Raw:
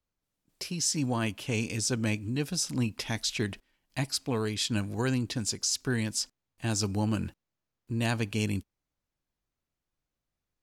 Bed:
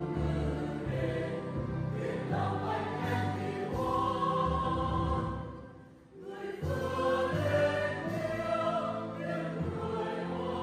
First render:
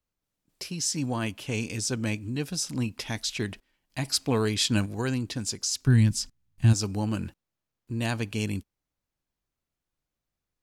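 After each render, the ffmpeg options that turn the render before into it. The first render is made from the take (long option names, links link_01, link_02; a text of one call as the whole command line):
ffmpeg -i in.wav -filter_complex "[0:a]asettb=1/sr,asplit=3[link_01][link_02][link_03];[link_01]atrim=end=4.054[link_04];[link_02]atrim=start=4.05:end=4.86,asetpts=PTS-STARTPTS,afade=type=in:duration=0.004:curve=qsin,afade=type=out:start_time=0.806:duration=0.004:curve=qsin,acontrast=27[link_05];[link_03]atrim=start=4.856[link_06];[link_04][link_05]acrossfade=duration=0.004:curve1=hsin:curve2=qsin[link_07];[link_07][link_06]acrossfade=duration=0.004:curve1=qsin:curve2=hsin,asplit=3[link_08][link_09][link_10];[link_08]afade=type=out:start_time=5.86:duration=0.02[link_11];[link_09]asubboost=boost=8:cutoff=170,afade=type=in:start_time=5.86:duration=0.02,afade=type=out:start_time=6.72:duration=0.02[link_12];[link_10]afade=type=in:start_time=6.72:duration=0.02[link_13];[link_11][link_12][link_13]amix=inputs=3:normalize=0" out.wav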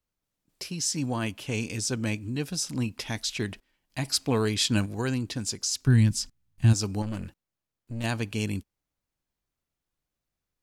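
ffmpeg -i in.wav -filter_complex "[0:a]asettb=1/sr,asplit=3[link_01][link_02][link_03];[link_01]atrim=end=7.024[link_04];[link_02]atrim=start=7.02:end=8.04,asetpts=PTS-STARTPTS,afade=type=in:duration=0.004:curve=qsin,afade=type=out:start_time=1.016:duration=0.004:curve=qsin,aeval=exprs='(tanh(25.1*val(0)+0.55)-tanh(0.55))/25.1':channel_layout=same[link_05];[link_03]atrim=start=8.036[link_06];[link_04][link_05]acrossfade=duration=0.004:curve1=hsin:curve2=qsin[link_07];[link_07][link_06]acrossfade=duration=0.004:curve1=qsin:curve2=hsin" out.wav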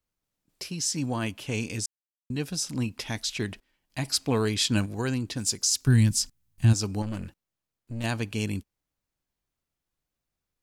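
ffmpeg -i in.wav -filter_complex "[0:a]asettb=1/sr,asplit=3[link_01][link_02][link_03];[link_01]atrim=end=5.374[link_04];[link_02]atrim=start=5.37:end=6.65,asetpts=PTS-STARTPTS,afade=type=in:duration=0.004:curve=qsin,afade=type=out:start_time=1.276:duration=0.004:curve=qsin,highshelf=frequency=6200:gain=9[link_05];[link_03]atrim=start=6.646[link_06];[link_04][link_05]acrossfade=duration=0.004:curve1=hsin:curve2=qsin[link_07];[link_07][link_06]acrossfade=duration=0.004:curve1=qsin:curve2=hsin,asplit=3[link_08][link_09][link_10];[link_08]atrim=end=1.86,asetpts=PTS-STARTPTS,afade=type=out:start_time=1.856:duration=0.004:curve=hsin[link_11];[link_09]atrim=start=1.86:end=2.3,asetpts=PTS-STARTPTS,volume=0[link_12];[link_10]atrim=start=2.3,asetpts=PTS-STARTPTS,afade=type=in:duration=0.004:curve=hsin[link_13];[link_11][link_12][link_13]concat=n=3:v=0:a=1" out.wav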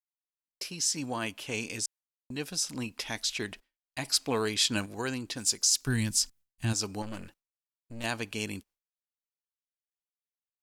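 ffmpeg -i in.wav -af "agate=range=-33dB:threshold=-46dB:ratio=3:detection=peak,equalizer=frequency=95:width_type=o:width=2.9:gain=-12" out.wav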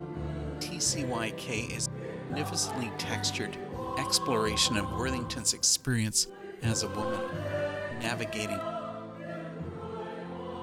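ffmpeg -i in.wav -i bed.wav -filter_complex "[1:a]volume=-4dB[link_01];[0:a][link_01]amix=inputs=2:normalize=0" out.wav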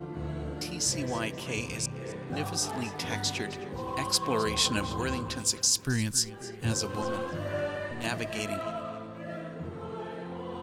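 ffmpeg -i in.wav -filter_complex "[0:a]asplit=2[link_01][link_02];[link_02]adelay=264,lowpass=frequency=4500:poles=1,volume=-15dB,asplit=2[link_03][link_04];[link_04]adelay=264,lowpass=frequency=4500:poles=1,volume=0.54,asplit=2[link_05][link_06];[link_06]adelay=264,lowpass=frequency=4500:poles=1,volume=0.54,asplit=2[link_07][link_08];[link_08]adelay=264,lowpass=frequency=4500:poles=1,volume=0.54,asplit=2[link_09][link_10];[link_10]adelay=264,lowpass=frequency=4500:poles=1,volume=0.54[link_11];[link_01][link_03][link_05][link_07][link_09][link_11]amix=inputs=6:normalize=0" out.wav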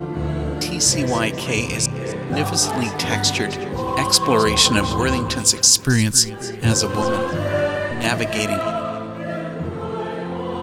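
ffmpeg -i in.wav -af "volume=12dB,alimiter=limit=-1dB:level=0:latency=1" out.wav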